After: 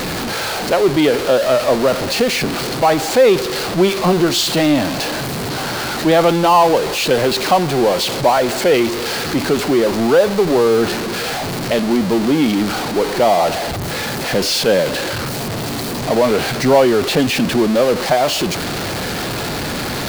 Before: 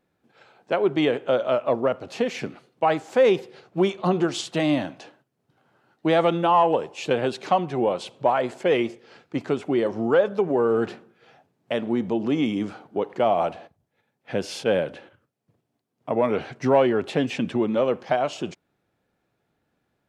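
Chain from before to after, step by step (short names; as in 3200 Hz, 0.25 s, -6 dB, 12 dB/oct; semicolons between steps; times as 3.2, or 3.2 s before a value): zero-crossing step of -21.5 dBFS; bell 4400 Hz +6.5 dB 0.38 oct; gain +5 dB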